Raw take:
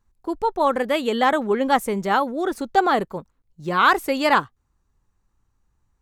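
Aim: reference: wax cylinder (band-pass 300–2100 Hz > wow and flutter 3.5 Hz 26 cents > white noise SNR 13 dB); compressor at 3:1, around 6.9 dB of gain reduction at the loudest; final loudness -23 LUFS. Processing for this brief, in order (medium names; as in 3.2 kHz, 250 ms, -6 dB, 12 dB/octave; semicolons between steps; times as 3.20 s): compression 3:1, threshold -21 dBFS; band-pass 300–2100 Hz; wow and flutter 3.5 Hz 26 cents; white noise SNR 13 dB; trim +3.5 dB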